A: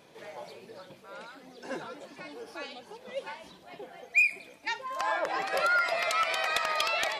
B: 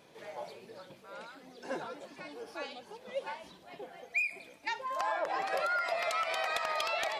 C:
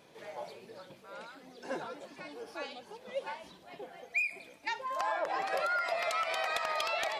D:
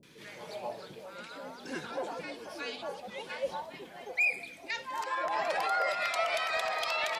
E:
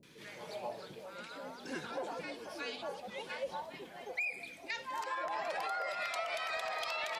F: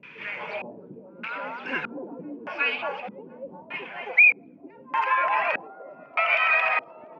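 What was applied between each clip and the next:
dynamic bell 720 Hz, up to +5 dB, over -45 dBFS, Q 1.1; compression 3:1, threshold -28 dBFS, peak gain reduction 7.5 dB; trim -2.5 dB
no audible change
peak limiter -27 dBFS, peak gain reduction 8.5 dB; three bands offset in time lows, highs, mids 30/270 ms, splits 390/1200 Hz; trim +6 dB
compression 6:1, threshold -32 dBFS, peak gain reduction 8 dB; trim -2 dB
LFO low-pass square 0.81 Hz 300–2400 Hz; cabinet simulation 150–8400 Hz, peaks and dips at 330 Hz -5 dB, 980 Hz +7 dB, 1.4 kHz +5 dB, 2.6 kHz +8 dB, 3.9 kHz -8 dB, 6.5 kHz -3 dB; trim +8 dB

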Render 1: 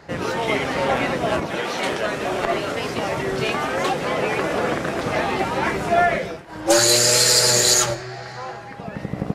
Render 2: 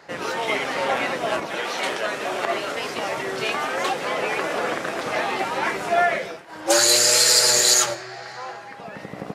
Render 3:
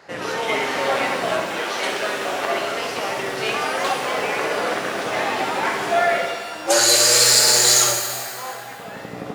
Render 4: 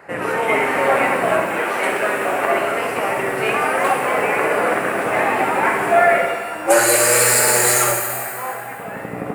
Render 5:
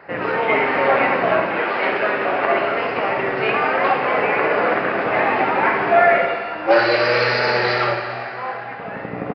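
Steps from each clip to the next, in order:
high-pass 550 Hz 6 dB/octave
flutter echo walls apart 11.3 m, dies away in 0.47 s; pitch-shifted reverb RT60 1.6 s, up +12 st, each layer -8 dB, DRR 4.5 dB
high-order bell 4.6 kHz -16 dB 1.3 oct; trim +5 dB
resampled via 11.025 kHz

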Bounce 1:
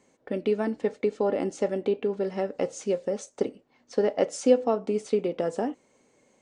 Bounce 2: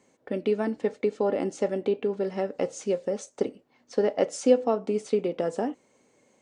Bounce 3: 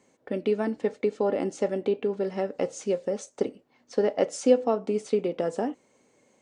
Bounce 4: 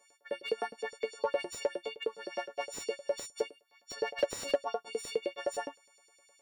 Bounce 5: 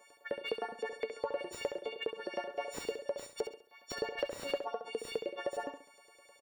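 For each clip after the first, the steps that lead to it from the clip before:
high-pass 56 Hz
no audible change
partials quantised in pitch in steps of 4 st; LFO high-pass saw up 9.7 Hz 420–5400 Hz; slew-rate limiter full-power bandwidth 130 Hz; trim -7.5 dB
peaking EQ 6.5 kHz -9 dB 1.7 oct; compression 3:1, threshold -45 dBFS, peak gain reduction 16.5 dB; on a send: feedback delay 67 ms, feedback 35%, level -8.5 dB; on the sum: trim +8 dB

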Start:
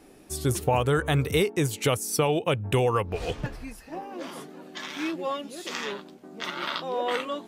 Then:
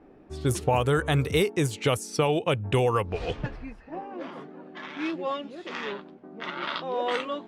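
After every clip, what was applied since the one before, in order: level-controlled noise filter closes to 1.4 kHz, open at -19.5 dBFS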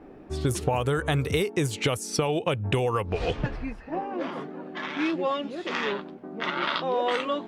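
compression 6:1, threshold -28 dBFS, peak gain reduction 9.5 dB; trim +6 dB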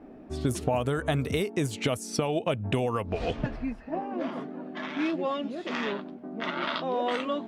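small resonant body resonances 240/640 Hz, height 9 dB, ringing for 45 ms; trim -4 dB

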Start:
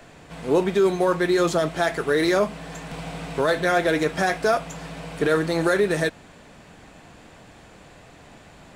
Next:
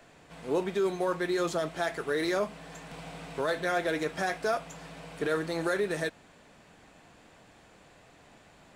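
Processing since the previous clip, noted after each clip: bass shelf 200 Hz -5 dB; trim -8 dB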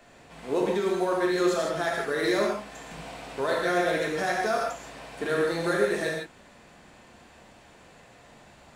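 gated-style reverb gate 190 ms flat, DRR -2 dB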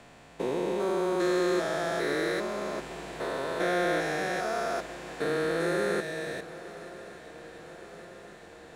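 spectrogram pixelated in time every 400 ms; shuffle delay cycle 1170 ms, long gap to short 3:1, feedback 64%, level -18 dB

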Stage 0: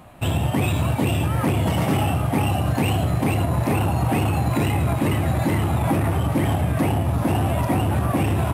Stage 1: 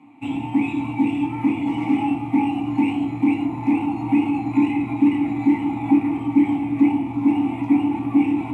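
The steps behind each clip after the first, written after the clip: vowel filter u; reverberation RT60 0.50 s, pre-delay 3 ms, DRR -1 dB; trim +8 dB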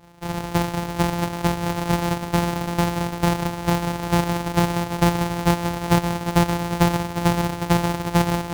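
sorted samples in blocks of 256 samples; peaking EQ 850 Hz +7.5 dB 0.42 oct; trim -2.5 dB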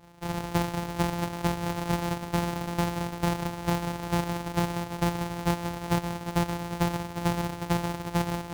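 gain riding within 4 dB; trim -7.5 dB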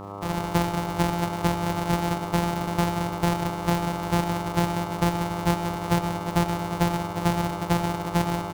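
mains buzz 100 Hz, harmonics 13, -41 dBFS -2 dB/octave; speakerphone echo 100 ms, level -7 dB; trim +3 dB

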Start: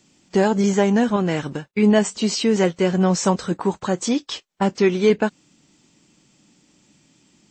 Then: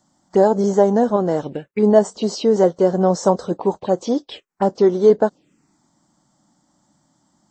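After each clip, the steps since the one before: touch-sensitive phaser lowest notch 430 Hz, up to 2.5 kHz, full sweep at -18 dBFS; peaking EQ 600 Hz +13 dB 1.9 oct; trim -5 dB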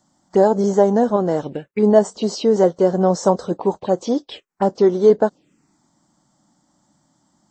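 no audible change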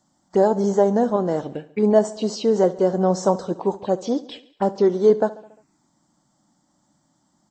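feedback delay 70 ms, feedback 58%, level -18 dB; trim -3 dB

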